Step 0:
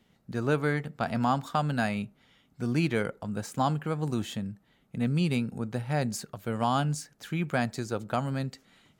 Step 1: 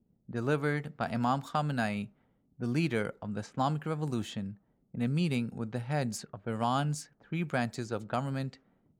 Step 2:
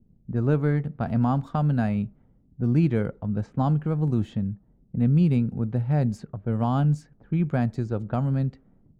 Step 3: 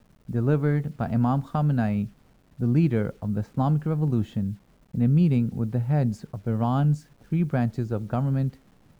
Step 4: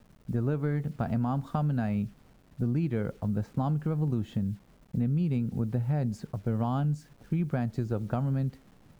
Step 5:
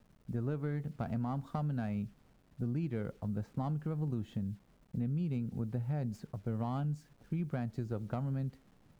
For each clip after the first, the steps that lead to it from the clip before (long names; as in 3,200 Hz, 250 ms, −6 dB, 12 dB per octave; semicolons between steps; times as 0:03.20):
low-pass that shuts in the quiet parts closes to 350 Hz, open at −27 dBFS; level −3 dB
spectral tilt −4 dB per octave
bit reduction 10 bits
downward compressor, threshold −25 dBFS, peak gain reduction 9 dB
stylus tracing distortion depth 0.051 ms; level −7 dB